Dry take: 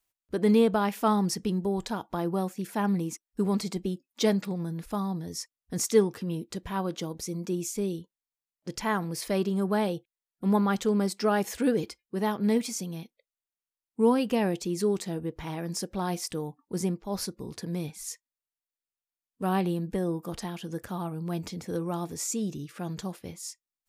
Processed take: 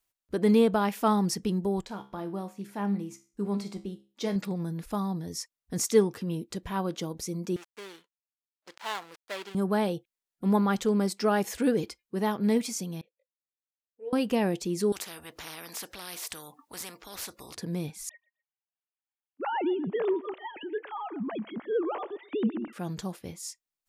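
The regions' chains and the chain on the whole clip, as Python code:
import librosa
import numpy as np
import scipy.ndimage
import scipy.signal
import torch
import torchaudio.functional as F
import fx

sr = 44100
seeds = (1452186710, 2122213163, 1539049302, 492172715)

y = fx.chain(x, sr, fx.high_shelf(hz=5700.0, db=-6.0),
    fx.comb_fb(f0_hz=67.0, decay_s=0.36, harmonics='all', damping=0.0, mix_pct=70), at=(1.81, 4.36))
y = fx.chain(y, sr, fx.dead_time(dead_ms=0.22),
    fx.highpass(hz=860.0, slope=12),
    fx.high_shelf(hz=8600.0, db=-11.5), at=(7.56, 9.55))
y = fx.chain(y, sr, fx.vowel_filter(vowel='e'),
    fx.peak_eq(hz=230.0, db=-13.5, octaves=0.39),
    fx.detune_double(cents=21), at=(13.01, 14.13))
y = fx.chain(y, sr, fx.highpass(hz=59.0, slope=12),
    fx.low_shelf_res(hz=230.0, db=-7.0, q=1.5),
    fx.spectral_comp(ratio=4.0), at=(14.92, 17.55))
y = fx.chain(y, sr, fx.sine_speech(),
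    fx.echo_feedback(ms=126, feedback_pct=25, wet_db=-20.0), at=(18.09, 22.73))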